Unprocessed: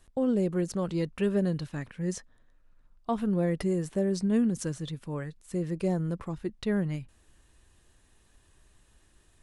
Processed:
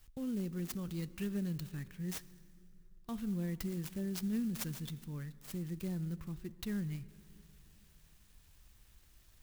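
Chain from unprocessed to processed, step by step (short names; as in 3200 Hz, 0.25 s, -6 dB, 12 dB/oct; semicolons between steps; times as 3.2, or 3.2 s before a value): passive tone stack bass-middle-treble 6-0-2; in parallel at -2.5 dB: compressor, threshold -57 dBFS, peak gain reduction 14.5 dB; on the sum: high shelf 6400 Hz +9.5 dB; plate-style reverb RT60 3.1 s, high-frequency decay 0.55×, DRR 16 dB; clock jitter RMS 0.037 ms; gain +7 dB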